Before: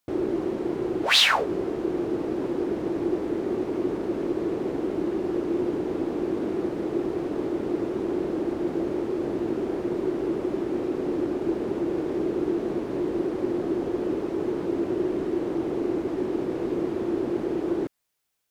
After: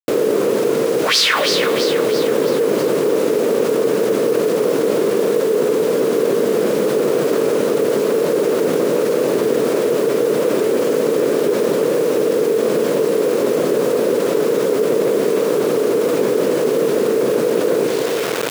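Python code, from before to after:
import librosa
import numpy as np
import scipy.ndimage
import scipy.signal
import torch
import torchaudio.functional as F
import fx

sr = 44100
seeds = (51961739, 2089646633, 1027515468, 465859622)

p1 = fx.formant_shift(x, sr, semitones=4)
p2 = fx.rider(p1, sr, range_db=10, speed_s=0.5)
p3 = p1 + (p2 * 10.0 ** (-1.5 / 20.0))
p4 = fx.peak_eq(p3, sr, hz=770.0, db=-8.5, octaves=0.46)
p5 = fx.hum_notches(p4, sr, base_hz=60, count=3)
p6 = p5 + fx.echo_split(p5, sr, split_hz=490.0, low_ms=146, high_ms=328, feedback_pct=52, wet_db=-9.5, dry=0)
p7 = fx.rev_spring(p6, sr, rt60_s=3.2, pass_ms=(54, 59), chirp_ms=50, drr_db=13.0)
p8 = fx.quant_dither(p7, sr, seeds[0], bits=6, dither='none')
p9 = scipy.signal.sosfilt(scipy.signal.butter(4, 140.0, 'highpass', fs=sr, output='sos'), p8)
y = fx.env_flatten(p9, sr, amount_pct=70)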